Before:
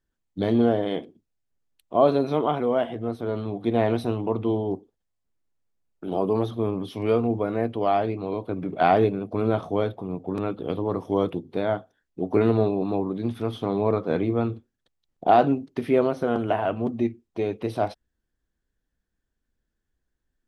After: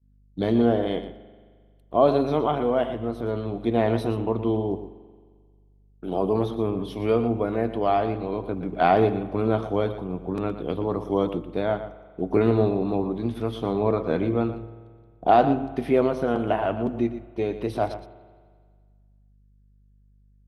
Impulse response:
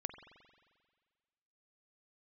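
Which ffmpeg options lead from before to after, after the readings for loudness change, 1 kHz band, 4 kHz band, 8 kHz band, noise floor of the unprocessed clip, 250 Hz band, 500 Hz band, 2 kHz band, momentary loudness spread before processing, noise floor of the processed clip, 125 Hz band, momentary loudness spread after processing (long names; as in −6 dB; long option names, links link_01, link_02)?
+0.5 dB, +0.5 dB, +0.5 dB, can't be measured, −80 dBFS, +0.5 dB, +0.5 dB, +0.5 dB, 10 LU, −58 dBFS, +0.5 dB, 10 LU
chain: -filter_complex "[0:a]aeval=exprs='val(0)+0.00562*(sin(2*PI*50*n/s)+sin(2*PI*2*50*n/s)/2+sin(2*PI*3*50*n/s)/3+sin(2*PI*4*50*n/s)/4+sin(2*PI*5*50*n/s)/5)':channel_layout=same,agate=range=-33dB:threshold=-37dB:ratio=3:detection=peak,asplit=2[link_01][link_02];[1:a]atrim=start_sample=2205,adelay=118[link_03];[link_02][link_03]afir=irnorm=-1:irlink=0,volume=-9.5dB[link_04];[link_01][link_04]amix=inputs=2:normalize=0"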